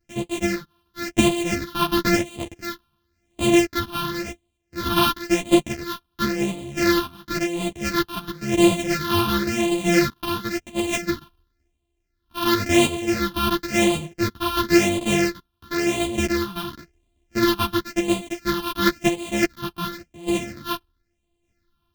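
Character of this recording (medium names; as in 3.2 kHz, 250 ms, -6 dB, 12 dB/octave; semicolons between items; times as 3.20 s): a buzz of ramps at a fixed pitch in blocks of 128 samples; phasing stages 6, 0.95 Hz, lowest notch 530–1500 Hz; random-step tremolo; a shimmering, thickened sound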